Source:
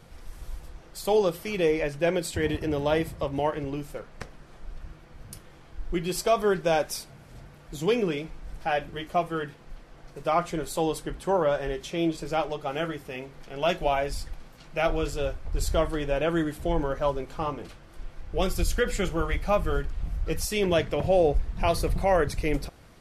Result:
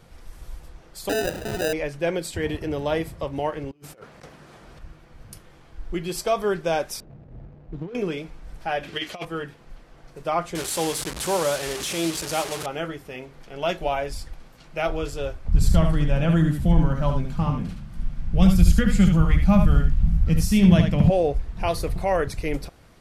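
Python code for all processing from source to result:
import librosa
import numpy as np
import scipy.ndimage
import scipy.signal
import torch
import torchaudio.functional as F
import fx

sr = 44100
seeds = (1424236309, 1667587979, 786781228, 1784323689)

y = fx.chain(x, sr, fx.highpass(hz=510.0, slope=6),
    fx.sample_hold(seeds[0], rate_hz=1100.0, jitter_pct=0),
    fx.env_flatten(amount_pct=50), at=(1.09, 1.73))
y = fx.chain(y, sr, fx.highpass(hz=87.0, slope=12),
    fx.low_shelf(hz=200.0, db=-2.0),
    fx.over_compress(threshold_db=-43.0, ratio=-0.5), at=(3.71, 4.79))
y = fx.chain(y, sr, fx.median_filter(points=41),
    fx.over_compress(threshold_db=-32.0, ratio=-1.0),
    fx.spacing_loss(db_at_10k=25), at=(7.0, 7.95))
y = fx.chain(y, sr, fx.weighting(curve='D'),
    fx.over_compress(threshold_db=-29.0, ratio=-0.5), at=(8.83, 9.25))
y = fx.chain(y, sr, fx.delta_mod(bps=64000, step_db=-27.0),
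    fx.highpass(hz=55.0, slope=12),
    fx.high_shelf(hz=2900.0, db=7.5), at=(10.55, 12.66))
y = fx.chain(y, sr, fx.low_shelf_res(hz=280.0, db=10.5, q=3.0),
    fx.echo_single(ms=74, db=-6.0), at=(15.48, 21.1))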